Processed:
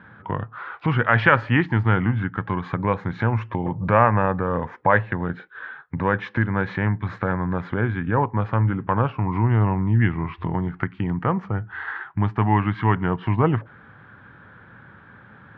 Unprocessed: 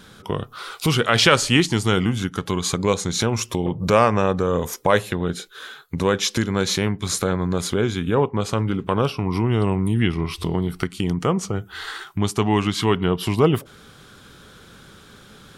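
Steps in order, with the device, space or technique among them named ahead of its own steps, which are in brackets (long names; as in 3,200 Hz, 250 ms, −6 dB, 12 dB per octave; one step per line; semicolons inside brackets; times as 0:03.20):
bass cabinet (loudspeaker in its box 74–2,100 Hz, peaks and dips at 110 Hz +8 dB, 410 Hz −7 dB, 910 Hz +7 dB, 1,700 Hz +9 dB)
level −2 dB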